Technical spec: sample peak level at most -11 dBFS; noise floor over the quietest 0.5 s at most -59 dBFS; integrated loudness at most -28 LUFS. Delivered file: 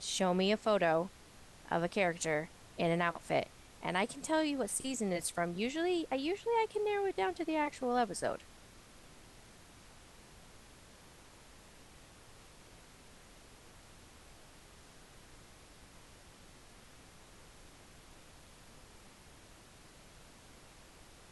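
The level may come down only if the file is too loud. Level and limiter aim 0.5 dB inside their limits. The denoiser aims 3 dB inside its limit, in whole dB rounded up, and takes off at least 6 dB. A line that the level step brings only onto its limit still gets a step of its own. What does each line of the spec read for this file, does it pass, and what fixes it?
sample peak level -17.5 dBFS: pass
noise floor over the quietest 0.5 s -58 dBFS: fail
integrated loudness -34.5 LUFS: pass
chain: noise reduction 6 dB, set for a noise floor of -58 dBFS

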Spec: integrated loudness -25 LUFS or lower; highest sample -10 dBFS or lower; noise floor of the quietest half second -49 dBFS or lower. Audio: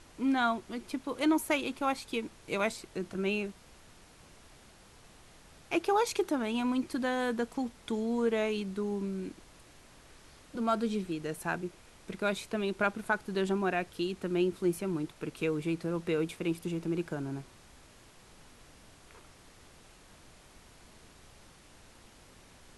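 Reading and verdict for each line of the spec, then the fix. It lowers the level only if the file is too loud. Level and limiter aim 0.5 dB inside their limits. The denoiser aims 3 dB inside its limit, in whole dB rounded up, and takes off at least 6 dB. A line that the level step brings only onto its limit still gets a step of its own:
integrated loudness -33.0 LUFS: pass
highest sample -15.0 dBFS: pass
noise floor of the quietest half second -57 dBFS: pass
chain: none needed

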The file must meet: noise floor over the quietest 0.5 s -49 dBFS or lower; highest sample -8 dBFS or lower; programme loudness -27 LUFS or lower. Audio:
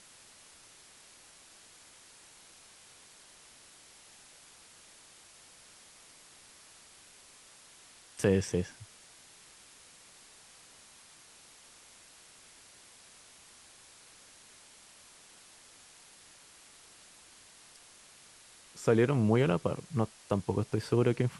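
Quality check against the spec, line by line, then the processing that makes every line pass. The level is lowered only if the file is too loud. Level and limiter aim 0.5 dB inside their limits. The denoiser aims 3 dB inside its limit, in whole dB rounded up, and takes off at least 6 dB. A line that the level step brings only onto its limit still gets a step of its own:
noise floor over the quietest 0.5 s -57 dBFS: pass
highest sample -13.0 dBFS: pass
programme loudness -30.0 LUFS: pass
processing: none needed

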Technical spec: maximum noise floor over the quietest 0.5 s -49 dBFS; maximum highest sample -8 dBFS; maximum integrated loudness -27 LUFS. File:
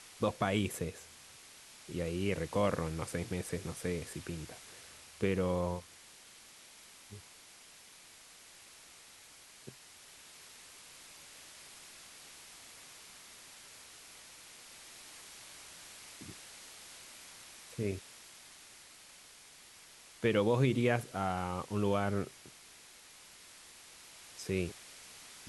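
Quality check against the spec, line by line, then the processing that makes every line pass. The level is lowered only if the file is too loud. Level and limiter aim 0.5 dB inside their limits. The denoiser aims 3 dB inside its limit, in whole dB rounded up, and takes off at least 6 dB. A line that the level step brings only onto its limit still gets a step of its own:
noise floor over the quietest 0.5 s -57 dBFS: pass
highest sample -16.0 dBFS: pass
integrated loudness -36.0 LUFS: pass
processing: none needed

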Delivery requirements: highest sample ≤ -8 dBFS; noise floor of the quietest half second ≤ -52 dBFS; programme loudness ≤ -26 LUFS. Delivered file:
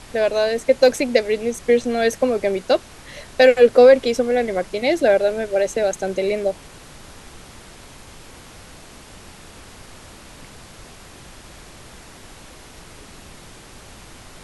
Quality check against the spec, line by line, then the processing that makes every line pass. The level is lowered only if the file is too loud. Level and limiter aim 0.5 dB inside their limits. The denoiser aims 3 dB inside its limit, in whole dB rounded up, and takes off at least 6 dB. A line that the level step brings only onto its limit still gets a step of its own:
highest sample -2.0 dBFS: fail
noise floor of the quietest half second -42 dBFS: fail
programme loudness -18.0 LUFS: fail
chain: noise reduction 6 dB, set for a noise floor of -42 dBFS; trim -8.5 dB

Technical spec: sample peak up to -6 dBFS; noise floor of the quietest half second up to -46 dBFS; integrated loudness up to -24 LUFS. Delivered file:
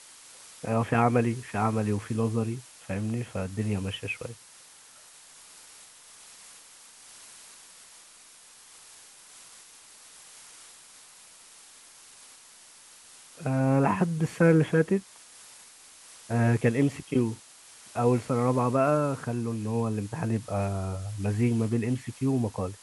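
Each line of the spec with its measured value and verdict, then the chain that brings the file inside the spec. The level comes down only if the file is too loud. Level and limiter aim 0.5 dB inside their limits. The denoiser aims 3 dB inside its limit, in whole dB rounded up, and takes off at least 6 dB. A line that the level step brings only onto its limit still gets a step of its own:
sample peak -9.0 dBFS: pass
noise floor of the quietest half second -53 dBFS: pass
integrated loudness -27.5 LUFS: pass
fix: none needed

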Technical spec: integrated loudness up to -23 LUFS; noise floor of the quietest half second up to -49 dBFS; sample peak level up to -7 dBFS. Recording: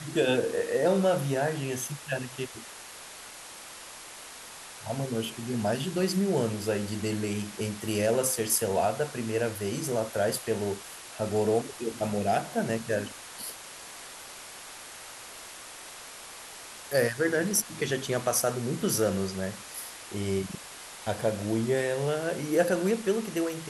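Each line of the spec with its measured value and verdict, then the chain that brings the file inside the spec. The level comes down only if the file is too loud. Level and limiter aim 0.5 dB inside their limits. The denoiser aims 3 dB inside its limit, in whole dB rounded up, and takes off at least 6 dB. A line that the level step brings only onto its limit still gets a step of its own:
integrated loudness -29.0 LUFS: pass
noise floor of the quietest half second -45 dBFS: fail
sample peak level -9.5 dBFS: pass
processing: noise reduction 7 dB, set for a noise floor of -45 dBFS

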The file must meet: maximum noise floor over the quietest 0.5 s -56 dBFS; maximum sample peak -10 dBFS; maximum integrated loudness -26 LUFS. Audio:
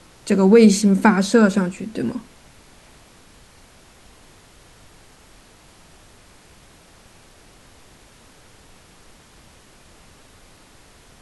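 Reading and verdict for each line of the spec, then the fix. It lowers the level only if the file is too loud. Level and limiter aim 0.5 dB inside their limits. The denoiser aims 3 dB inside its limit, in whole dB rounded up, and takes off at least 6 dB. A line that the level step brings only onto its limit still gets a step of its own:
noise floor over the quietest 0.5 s -49 dBFS: fail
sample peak -2.5 dBFS: fail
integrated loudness -16.5 LUFS: fail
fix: trim -10 dB

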